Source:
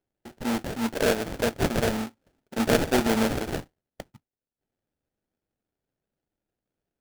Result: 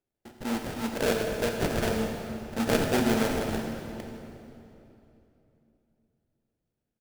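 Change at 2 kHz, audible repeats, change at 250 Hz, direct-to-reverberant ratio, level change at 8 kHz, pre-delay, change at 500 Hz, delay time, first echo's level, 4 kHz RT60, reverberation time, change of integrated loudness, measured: -2.5 dB, 1, -2.0 dB, 2.5 dB, -2.5 dB, 19 ms, -2.0 dB, 87 ms, -14.0 dB, 2.4 s, 3.0 s, -2.5 dB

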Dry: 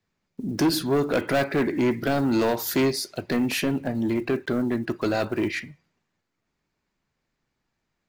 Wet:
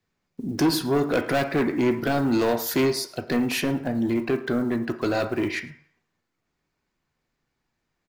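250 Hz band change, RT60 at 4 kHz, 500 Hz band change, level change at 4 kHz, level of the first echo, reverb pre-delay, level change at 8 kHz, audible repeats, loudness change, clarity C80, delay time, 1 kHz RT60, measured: +0.5 dB, 0.55 s, +0.5 dB, 0.0 dB, -21.5 dB, 3 ms, 0.0 dB, 1, +0.5 dB, 15.5 dB, 108 ms, 0.60 s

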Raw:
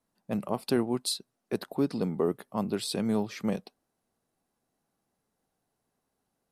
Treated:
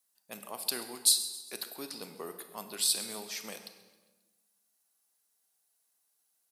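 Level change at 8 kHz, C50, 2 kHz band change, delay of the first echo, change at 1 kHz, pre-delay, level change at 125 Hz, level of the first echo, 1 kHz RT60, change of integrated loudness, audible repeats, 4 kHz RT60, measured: +10.5 dB, 9.0 dB, -1.5 dB, 134 ms, -8.0 dB, 24 ms, -22.5 dB, -17.5 dB, 1.1 s, +0.5 dB, 4, 1.0 s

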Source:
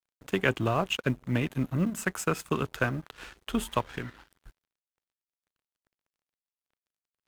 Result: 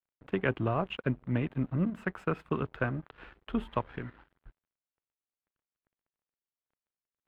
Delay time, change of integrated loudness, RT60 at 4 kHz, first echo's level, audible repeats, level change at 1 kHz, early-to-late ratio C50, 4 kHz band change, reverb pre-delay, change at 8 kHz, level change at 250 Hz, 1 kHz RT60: no echo, -3.0 dB, no reverb, no echo, no echo, -4.0 dB, no reverb, -11.0 dB, no reverb, under -30 dB, -2.0 dB, no reverb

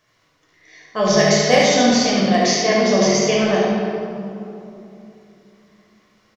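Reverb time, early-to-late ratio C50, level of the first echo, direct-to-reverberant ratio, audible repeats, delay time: 3.0 s, -2.0 dB, -4.0 dB, -5.5 dB, 1, 72 ms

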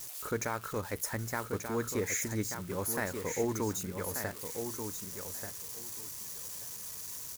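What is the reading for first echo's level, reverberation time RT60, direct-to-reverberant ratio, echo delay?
-7.0 dB, no reverb, no reverb, 1185 ms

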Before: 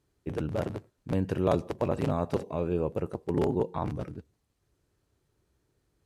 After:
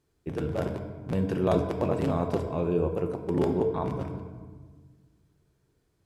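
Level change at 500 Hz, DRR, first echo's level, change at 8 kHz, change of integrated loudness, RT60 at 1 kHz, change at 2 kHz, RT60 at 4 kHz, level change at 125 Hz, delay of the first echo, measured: +2.5 dB, 4.0 dB, no echo, no reading, +2.0 dB, 1.4 s, +1.5 dB, 0.85 s, +2.0 dB, no echo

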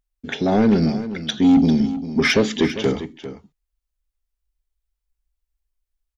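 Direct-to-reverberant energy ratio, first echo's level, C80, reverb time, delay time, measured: no reverb, -13.0 dB, no reverb, no reverb, 398 ms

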